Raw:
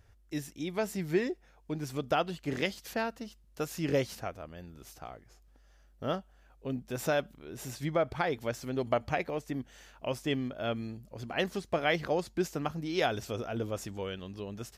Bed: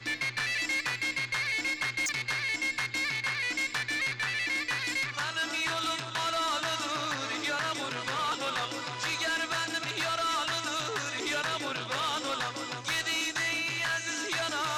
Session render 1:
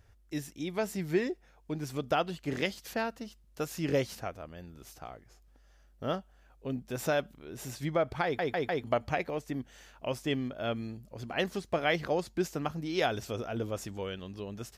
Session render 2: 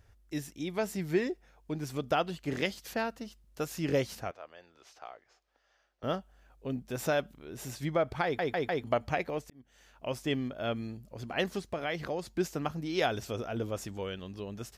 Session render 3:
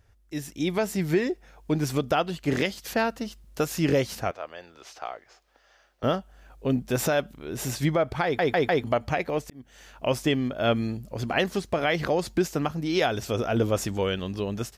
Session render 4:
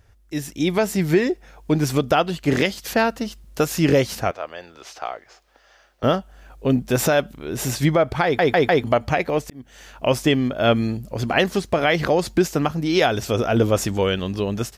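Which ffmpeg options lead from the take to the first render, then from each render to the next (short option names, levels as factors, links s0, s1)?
-filter_complex "[0:a]asplit=5[s0][s1][s2][s3][s4];[s0]atrim=end=8.392[s5];[s1]atrim=start=8.238:end=8.392[s6];[s2]atrim=start=8.238:end=8.392[s7];[s3]atrim=start=8.238:end=8.392[s8];[s4]atrim=start=8.838[s9];[s5][s6]acrossfade=d=0.004:c1=hsin:c2=hsin[s10];[s10][s7]acrossfade=d=0.004:c1=hsin:c2=hsin[s11];[s11][s8]acrossfade=d=0.004:c1=hsin:c2=hsin[s12];[s12][s9]acrossfade=d=0.004:c1=hsin:c2=hsin"
-filter_complex "[0:a]asettb=1/sr,asplit=3[s0][s1][s2];[s0]atrim=end=4.314[s3];[s1]atrim=start=4.31:end=6.03,asetpts=PTS-STARTPTS,afade=t=in:d=0.004:c=qsin,afade=t=out:st=1.716:d=0.004:c=qsin,acrossover=split=440 6200:gain=0.0708 1 0.0708[s4][s5][s6];[s4][s5][s6]amix=inputs=3:normalize=0[s7];[s2]atrim=start=6.026[s8];[s3][s7]acrossfade=d=0.004:c1=hsin:c2=qsin[s9];[s9][s8]acrossfade=d=0.004:c1=qsin:c2=hsin,asettb=1/sr,asplit=3[s10][s11][s12];[s10]atrim=end=11.674[s13];[s11]atrim=start=11.67:end=12.31,asetpts=PTS-STARTPTS,afade=t=in:d=0.004:c=qsin,afade=t=out:st=0.636:d=0.004:c=qsin,acompressor=threshold=0.0224:ratio=2:attack=3.2:release=140:knee=1:detection=peak[s14];[s12]atrim=start=12.306[s15];[s13][s14]acrossfade=d=0.004:c1=hsin:c2=qsin[s16];[s16][s15]acrossfade=d=0.004:c1=qsin:c2=hsin,asplit=2[s17][s18];[s17]atrim=end=9.5,asetpts=PTS-STARTPTS,afade=t=out:st=9.496:d=0.004:c=hsin[s19];[s18]atrim=start=9.5,asetpts=PTS-STARTPTS,afade=t=in:d=0.69[s20];[s19][s20]concat=n=2:v=0:a=1"
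-af "dynaudnorm=f=340:g=3:m=3.55,alimiter=limit=0.251:level=0:latency=1:release=472"
-af "volume=2"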